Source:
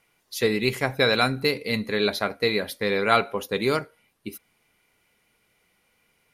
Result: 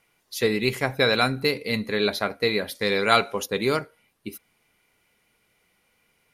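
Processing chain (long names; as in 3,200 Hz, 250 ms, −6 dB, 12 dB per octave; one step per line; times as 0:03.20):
0:02.75–0:03.46: parametric band 6,600 Hz +10.5 dB 1.4 octaves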